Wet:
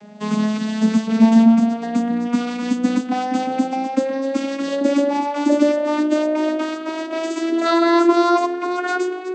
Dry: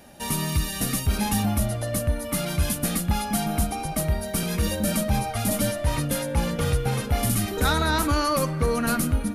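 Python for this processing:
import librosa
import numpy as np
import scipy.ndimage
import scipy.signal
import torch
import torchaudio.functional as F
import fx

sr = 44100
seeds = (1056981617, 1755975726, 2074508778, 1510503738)

y = fx.vocoder_glide(x, sr, note=56, semitones=10)
y = y * librosa.db_to_amplitude(9.0)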